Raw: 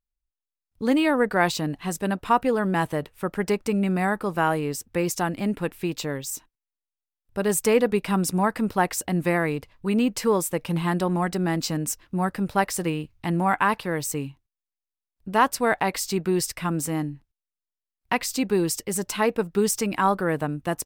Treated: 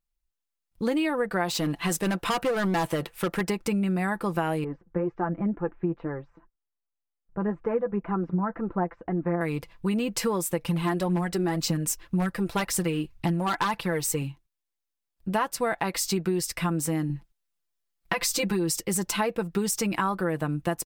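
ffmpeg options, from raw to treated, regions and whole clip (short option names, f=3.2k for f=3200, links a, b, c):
-filter_complex "[0:a]asettb=1/sr,asplit=3[a][b][c];[a]atrim=end=1.484[d];[b]atrim=start=1.48:end=3.41,asetpts=PTS-STARTPTS,afade=t=in:d=0.004:c=qsin,afade=t=out:st=1.926:d=0.004:c=qsin,lowshelf=f=230:g=-8,acontrast=41,asoftclip=type=hard:threshold=-20.5dB[e];[c]atrim=start=3.406[f];[d][e]acrossfade=d=0.004:c1=hsin:c2=qsin[g];[g][f]acrossfade=d=0.004:c1=qsin:c2=hsin,asettb=1/sr,asplit=3[h][i][j];[h]atrim=end=4.644[k];[i]atrim=start=4.64:end=9.41,asetpts=PTS-STARTPTS,afade=t=in:d=0.004:c=qsin,afade=t=out:st=4.766:d=0.004:c=qsin,lowpass=f=1.5k:w=0.5412,lowpass=f=1.5k:w=1.3066,flanger=delay=2.3:depth=3.8:regen=35:speed=2:shape=sinusoidal[l];[j]atrim=start=9.406[m];[k][l]acrossfade=d=0.004:c1=hsin:c2=qsin[n];[n][m]acrossfade=d=0.004:c1=qsin:c2=hsin,asettb=1/sr,asplit=3[o][p][q];[o]atrim=end=10.644[r];[p]atrim=start=10.64:end=14.22,asetpts=PTS-STARTPTS,afade=t=in:d=0.004:c=qsin,afade=t=out:st=3.576:d=0.004:c=qsin,aphaser=in_gain=1:out_gain=1:delay=3.2:decay=0.44:speed=1.9:type=triangular,aeval=exprs='0.2*(abs(mod(val(0)/0.2+3,4)-2)-1)':c=same[s];[q]atrim=start=14.216[t];[r][s]acrossfade=d=0.004:c1=hsin:c2=qsin[u];[u][t]acrossfade=d=0.004:c1=qsin:c2=hsin,asettb=1/sr,asplit=3[v][w][x];[v]atrim=end=17.094[y];[w]atrim=start=17.09:end=18.78,asetpts=PTS-STARTPTS,afade=t=in:d=0.004:c=qsin,afade=t=out:st=1.686:d=0.004:c=qsin,aecho=1:1:5.9:0.9,atrim=end_sample=74529,acompressor=threshold=-21dB:ratio=6:attack=3.2:release=140:knee=1:detection=peak[z];[x]atrim=start=18.776[aa];[y][z]acrossfade=d=0.004:c1=hsin:c2=qsin[ab];[ab][aa]acrossfade=d=0.004:c1=qsin:c2=hsin,aecho=1:1:5.9:0.47,acompressor=threshold=-25dB:ratio=6,volume=2dB"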